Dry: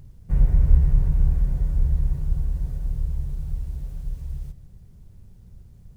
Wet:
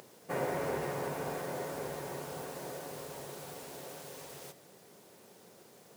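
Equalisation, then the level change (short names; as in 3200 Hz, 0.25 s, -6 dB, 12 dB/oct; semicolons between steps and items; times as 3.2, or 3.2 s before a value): ladder high-pass 340 Hz, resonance 20%; +17.0 dB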